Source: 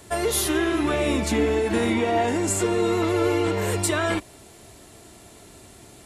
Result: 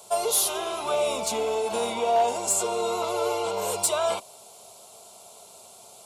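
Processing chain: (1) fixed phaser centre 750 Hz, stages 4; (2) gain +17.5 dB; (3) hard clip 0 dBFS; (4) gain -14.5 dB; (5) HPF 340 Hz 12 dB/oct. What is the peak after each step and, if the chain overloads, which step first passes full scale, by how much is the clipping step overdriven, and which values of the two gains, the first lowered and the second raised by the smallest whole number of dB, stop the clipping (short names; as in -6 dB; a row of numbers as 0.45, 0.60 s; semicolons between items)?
-11.0, +6.5, 0.0, -14.5, -12.0 dBFS; step 2, 6.5 dB; step 2 +10.5 dB, step 4 -7.5 dB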